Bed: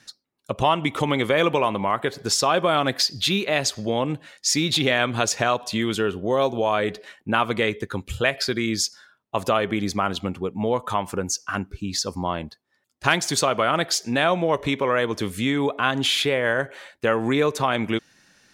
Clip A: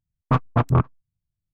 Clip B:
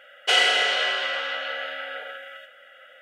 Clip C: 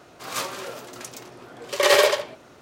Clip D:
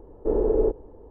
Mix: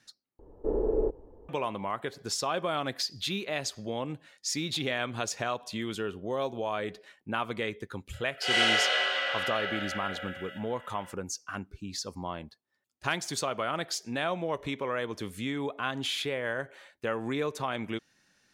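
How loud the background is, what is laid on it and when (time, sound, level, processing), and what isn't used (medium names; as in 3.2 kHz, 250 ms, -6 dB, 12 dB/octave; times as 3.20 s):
bed -10.5 dB
0.39 s: replace with D -6 dB
8.13 s: add B -3 dB + slow attack 217 ms
not used: A, C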